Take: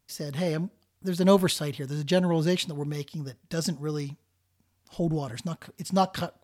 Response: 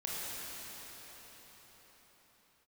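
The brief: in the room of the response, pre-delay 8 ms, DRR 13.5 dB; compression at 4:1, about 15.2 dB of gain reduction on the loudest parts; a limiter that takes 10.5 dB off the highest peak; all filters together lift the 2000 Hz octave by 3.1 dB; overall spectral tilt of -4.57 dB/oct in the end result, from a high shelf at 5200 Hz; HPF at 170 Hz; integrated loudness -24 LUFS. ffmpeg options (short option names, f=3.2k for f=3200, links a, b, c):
-filter_complex "[0:a]highpass=170,equalizer=f=2k:t=o:g=3.5,highshelf=f=5.2k:g=3.5,acompressor=threshold=-33dB:ratio=4,alimiter=level_in=6.5dB:limit=-24dB:level=0:latency=1,volume=-6.5dB,asplit=2[a][b];[1:a]atrim=start_sample=2205,adelay=8[c];[b][c]afir=irnorm=-1:irlink=0,volume=-18dB[d];[a][d]amix=inputs=2:normalize=0,volume=17dB"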